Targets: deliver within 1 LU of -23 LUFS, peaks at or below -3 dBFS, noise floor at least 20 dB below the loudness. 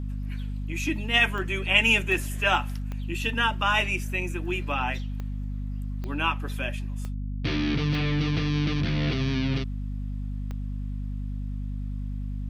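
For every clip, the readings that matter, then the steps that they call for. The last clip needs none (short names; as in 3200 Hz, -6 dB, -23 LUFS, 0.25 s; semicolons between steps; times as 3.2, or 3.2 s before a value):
clicks 8; hum 50 Hz; harmonics up to 250 Hz; hum level -29 dBFS; loudness -27.0 LUFS; peak -6.5 dBFS; loudness target -23.0 LUFS
-> de-click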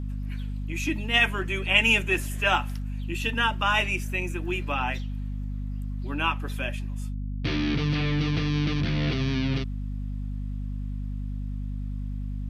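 clicks 0; hum 50 Hz; harmonics up to 250 Hz; hum level -29 dBFS
-> de-hum 50 Hz, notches 5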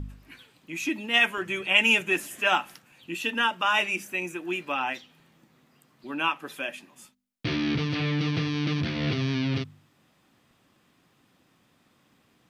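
hum none; loudness -26.0 LUFS; peak -6.5 dBFS; loudness target -23.0 LUFS
-> gain +3 dB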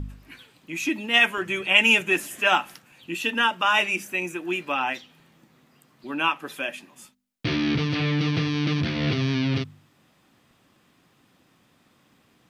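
loudness -23.0 LUFS; peak -3.5 dBFS; noise floor -63 dBFS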